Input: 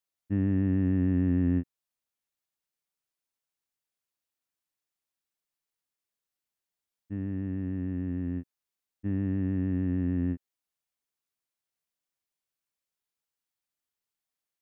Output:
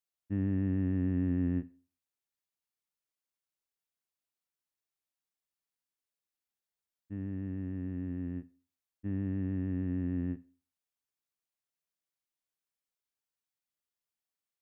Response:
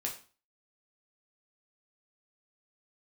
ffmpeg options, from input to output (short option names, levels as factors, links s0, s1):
-filter_complex "[0:a]asplit=2[s0][s1];[1:a]atrim=start_sample=2205,adelay=51[s2];[s1][s2]afir=irnorm=-1:irlink=0,volume=0.0944[s3];[s0][s3]amix=inputs=2:normalize=0,volume=0.562"